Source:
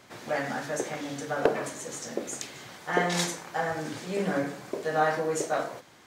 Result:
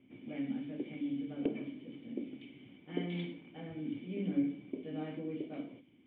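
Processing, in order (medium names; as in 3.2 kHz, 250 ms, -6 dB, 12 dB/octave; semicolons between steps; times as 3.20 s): level-controlled noise filter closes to 2.5 kHz, open at -22.5 dBFS; cascade formant filter i; trim +3 dB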